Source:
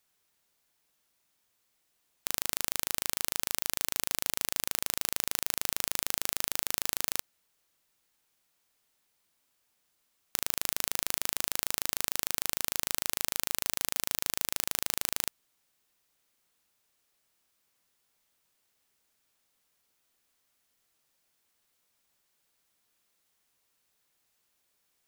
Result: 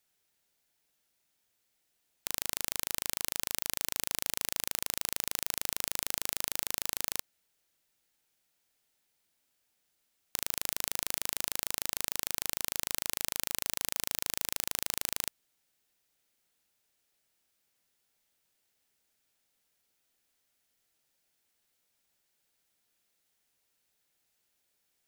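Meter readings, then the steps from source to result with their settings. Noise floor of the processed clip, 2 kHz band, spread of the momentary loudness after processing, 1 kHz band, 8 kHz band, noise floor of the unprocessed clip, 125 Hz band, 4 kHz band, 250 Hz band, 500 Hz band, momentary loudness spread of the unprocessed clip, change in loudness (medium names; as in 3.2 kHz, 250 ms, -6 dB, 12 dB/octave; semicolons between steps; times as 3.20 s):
-78 dBFS, -2.5 dB, 1 LU, -4.5 dB, -2.0 dB, -76 dBFS, -2.0 dB, -2.0 dB, -2.0 dB, -2.0 dB, 1 LU, -2.0 dB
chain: peaking EQ 1.1 kHz -6.5 dB 0.34 oct; trim -2 dB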